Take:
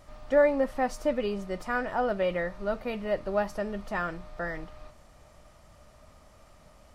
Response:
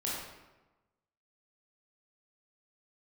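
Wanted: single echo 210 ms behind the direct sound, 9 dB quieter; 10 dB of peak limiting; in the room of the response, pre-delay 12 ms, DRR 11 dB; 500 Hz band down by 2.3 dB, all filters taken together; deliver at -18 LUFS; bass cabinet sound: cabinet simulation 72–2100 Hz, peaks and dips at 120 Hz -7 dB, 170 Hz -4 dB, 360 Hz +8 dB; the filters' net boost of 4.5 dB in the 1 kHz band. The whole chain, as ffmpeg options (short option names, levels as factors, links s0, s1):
-filter_complex "[0:a]equalizer=f=500:t=o:g=-7,equalizer=f=1000:t=o:g=9,alimiter=limit=0.0841:level=0:latency=1,aecho=1:1:210:0.355,asplit=2[s0][s1];[1:a]atrim=start_sample=2205,adelay=12[s2];[s1][s2]afir=irnorm=-1:irlink=0,volume=0.168[s3];[s0][s3]amix=inputs=2:normalize=0,highpass=f=72:w=0.5412,highpass=f=72:w=1.3066,equalizer=f=120:t=q:w=4:g=-7,equalizer=f=170:t=q:w=4:g=-4,equalizer=f=360:t=q:w=4:g=8,lowpass=f=2100:w=0.5412,lowpass=f=2100:w=1.3066,volume=5.01"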